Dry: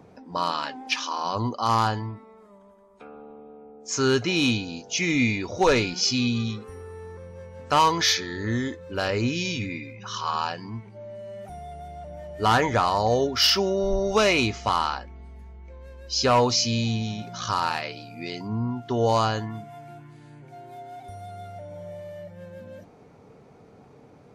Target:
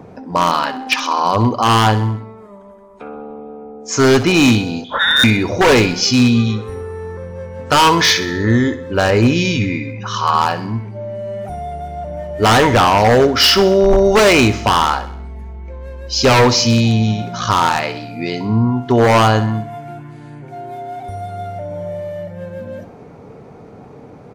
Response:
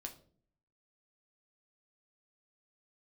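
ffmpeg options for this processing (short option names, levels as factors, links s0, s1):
-filter_complex "[0:a]asettb=1/sr,asplit=3[s0][s1][s2];[s0]atrim=end=4.844[s3];[s1]atrim=start=4.84:end=5.24,asetpts=PTS-STARTPTS,afade=t=in:d=0.004:c=qsin,afade=t=out:st=0.396:d=0.004:c=qsin,lowpass=f=3300:t=q:w=0.5098,lowpass=f=3300:t=q:w=0.6013,lowpass=f=3300:t=q:w=0.9,lowpass=f=3300:t=q:w=2.563,afreqshift=-3900[s4];[s2]atrim=start=5.236[s5];[s3][s4]acrossfade=d=0.004:c1=hsin:c2=qsin[s6];[s6][s5]acrossfade=d=0.004:c1=qsin:c2=hsin,asplit=2[s7][s8];[s8]adynamicsmooth=sensitivity=0.5:basefreq=3000,volume=0.891[s9];[s7][s9]amix=inputs=2:normalize=0,aeval=exprs='0.251*(abs(mod(val(0)/0.251+3,4)-2)-1)':c=same,aecho=1:1:64|128|192|256|320:0.188|0.0979|0.0509|0.0265|0.0138,volume=2.37"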